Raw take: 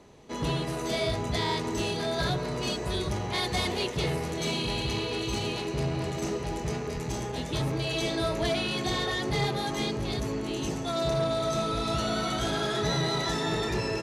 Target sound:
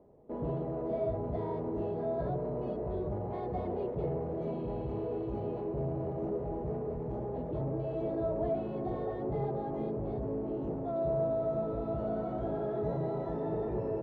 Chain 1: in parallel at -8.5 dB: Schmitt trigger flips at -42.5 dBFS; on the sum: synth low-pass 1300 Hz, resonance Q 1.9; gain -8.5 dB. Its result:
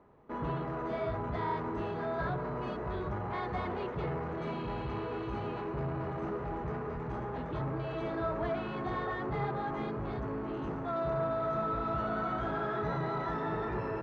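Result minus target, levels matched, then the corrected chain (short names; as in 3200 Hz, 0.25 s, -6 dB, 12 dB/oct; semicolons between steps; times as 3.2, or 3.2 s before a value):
1000 Hz band +6.0 dB
in parallel at -8.5 dB: Schmitt trigger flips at -42.5 dBFS; on the sum: synth low-pass 610 Hz, resonance Q 1.9; gain -8.5 dB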